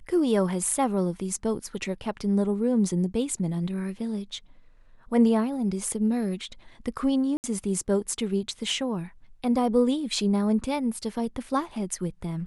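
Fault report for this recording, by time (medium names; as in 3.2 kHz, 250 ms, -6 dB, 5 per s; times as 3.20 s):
7.37–7.44 s: dropout 69 ms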